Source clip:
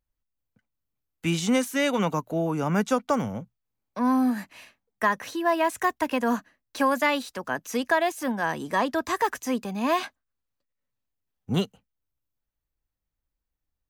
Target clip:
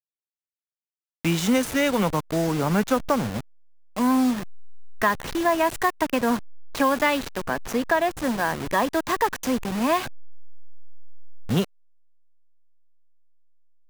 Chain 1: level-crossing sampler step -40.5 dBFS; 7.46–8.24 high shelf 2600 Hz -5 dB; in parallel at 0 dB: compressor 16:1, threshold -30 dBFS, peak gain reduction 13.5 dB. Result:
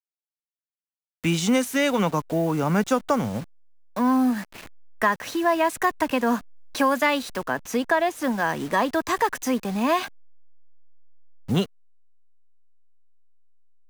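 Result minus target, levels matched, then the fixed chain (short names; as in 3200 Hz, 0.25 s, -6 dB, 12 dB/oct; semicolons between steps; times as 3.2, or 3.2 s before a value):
level-crossing sampler: distortion -12 dB
level-crossing sampler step -30 dBFS; 7.46–8.24 high shelf 2600 Hz -5 dB; in parallel at 0 dB: compressor 16:1, threshold -30 dBFS, peak gain reduction 13.5 dB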